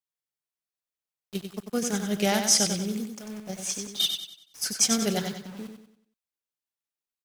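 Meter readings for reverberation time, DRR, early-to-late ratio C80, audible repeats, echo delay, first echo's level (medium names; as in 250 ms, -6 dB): no reverb, no reverb, no reverb, 4, 94 ms, -6.5 dB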